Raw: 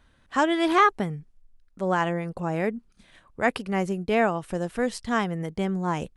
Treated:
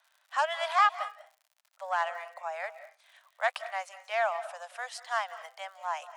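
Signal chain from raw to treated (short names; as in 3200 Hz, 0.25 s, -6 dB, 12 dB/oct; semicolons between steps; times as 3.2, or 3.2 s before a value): self-modulated delay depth 0.053 ms; LPF 9600 Hz 12 dB/oct; on a send at -14 dB: reverb RT60 0.35 s, pre-delay 0.142 s; on the sum: crackle 82/s -45 dBFS; steep high-pass 610 Hz 72 dB/oct; gain -3.5 dB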